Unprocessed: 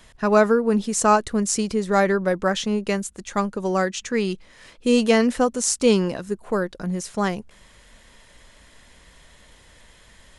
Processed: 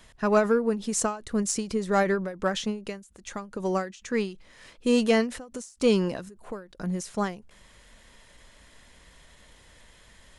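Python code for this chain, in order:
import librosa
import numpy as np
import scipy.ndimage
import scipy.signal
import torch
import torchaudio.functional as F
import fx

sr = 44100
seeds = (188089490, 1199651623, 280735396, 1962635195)

p1 = 10.0 ** (-14.5 / 20.0) * np.tanh(x / 10.0 ** (-14.5 / 20.0))
p2 = x + (p1 * librosa.db_to_amplitude(-6.5))
p3 = fx.end_taper(p2, sr, db_per_s=140.0)
y = p3 * librosa.db_to_amplitude(-6.5)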